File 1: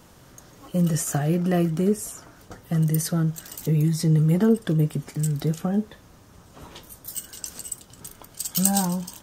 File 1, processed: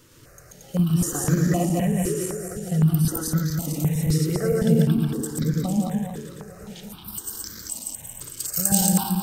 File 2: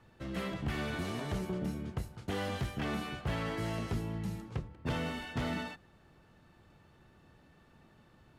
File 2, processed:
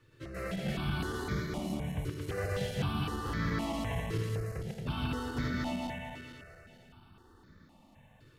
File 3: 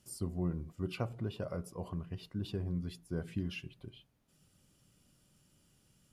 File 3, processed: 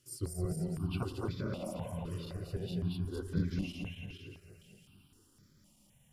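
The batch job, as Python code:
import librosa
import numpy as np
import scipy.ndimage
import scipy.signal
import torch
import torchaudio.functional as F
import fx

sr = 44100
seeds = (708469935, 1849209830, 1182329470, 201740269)

y = fx.reverse_delay_fb(x, sr, ms=113, feedback_pct=76, wet_db=-0.5)
y = y + 10.0 ** (-16.0 / 20.0) * np.pad(y, (int(172 * sr / 1000.0), 0))[:len(y)]
y = fx.phaser_held(y, sr, hz=3.9, low_hz=200.0, high_hz=2800.0)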